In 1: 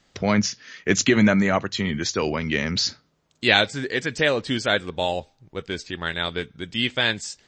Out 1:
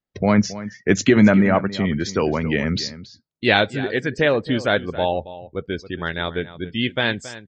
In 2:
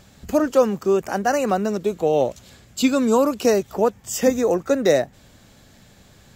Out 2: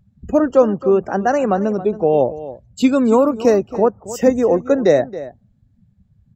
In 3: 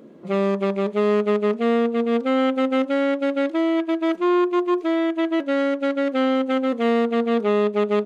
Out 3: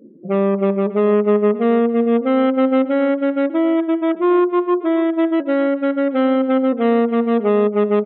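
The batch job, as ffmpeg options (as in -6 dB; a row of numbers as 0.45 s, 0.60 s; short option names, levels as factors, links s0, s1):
-filter_complex "[0:a]afftdn=nr=30:nf=-37,highshelf=f=2200:g=-10,asplit=2[s0][s1];[s1]adelay=274.1,volume=0.178,highshelf=f=4000:g=-6.17[s2];[s0][s2]amix=inputs=2:normalize=0,volume=1.68"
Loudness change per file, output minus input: +2.5 LU, +4.0 LU, +4.5 LU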